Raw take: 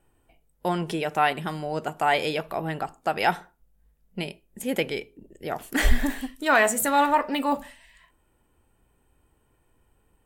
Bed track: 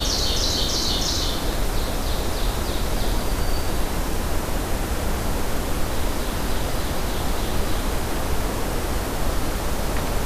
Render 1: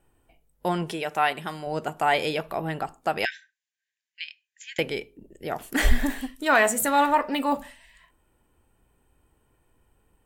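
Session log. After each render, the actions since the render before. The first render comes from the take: 0.88–1.67 low shelf 370 Hz -7.5 dB; 3.25–4.79 brick-wall FIR band-pass 1500–7500 Hz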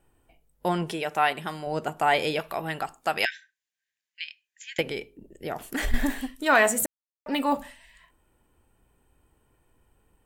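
2.39–3.25 tilt shelf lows -5 dB; 4.81–5.94 compressor 2.5:1, threshold -27 dBFS; 6.86–7.26 mute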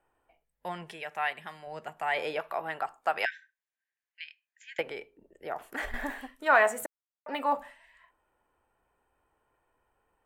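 0.44–2.17 spectral gain 240–1600 Hz -8 dB; three-band isolator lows -16 dB, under 490 Hz, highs -14 dB, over 2100 Hz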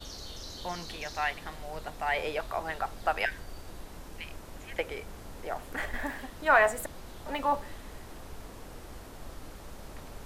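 add bed track -21 dB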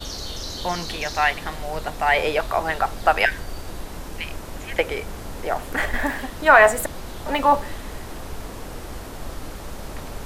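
gain +11 dB; limiter -1 dBFS, peak gain reduction 2 dB

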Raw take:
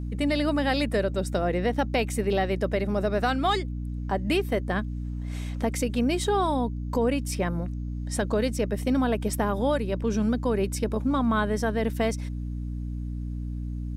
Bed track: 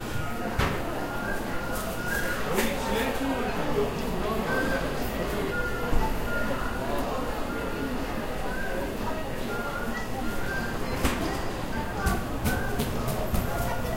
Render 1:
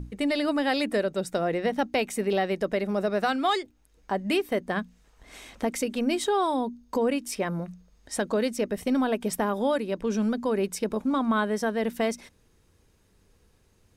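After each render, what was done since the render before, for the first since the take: notches 60/120/180/240/300 Hz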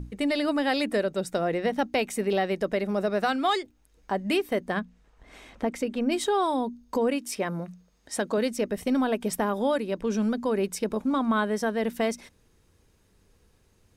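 4.79–6.12 high shelf 3900 Hz -11.5 dB; 7.1–8.38 HPF 120 Hz 6 dB/oct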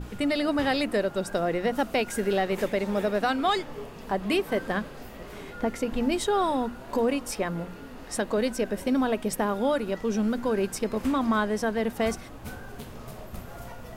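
add bed track -12.5 dB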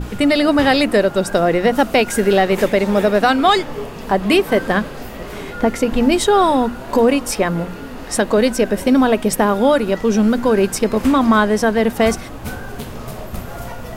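gain +11.5 dB

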